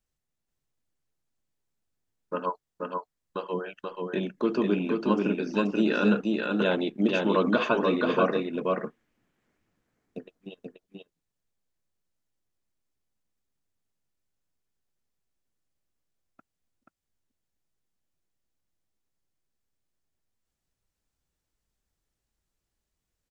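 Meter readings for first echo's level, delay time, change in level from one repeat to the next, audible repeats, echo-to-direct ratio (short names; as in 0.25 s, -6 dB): -3.0 dB, 0.482 s, no steady repeat, 1, -3.0 dB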